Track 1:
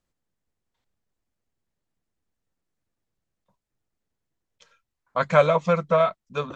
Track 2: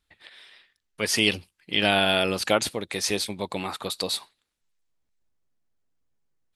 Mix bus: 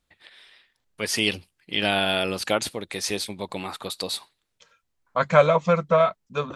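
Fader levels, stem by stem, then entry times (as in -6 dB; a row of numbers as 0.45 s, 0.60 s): +1.0 dB, -1.5 dB; 0.00 s, 0.00 s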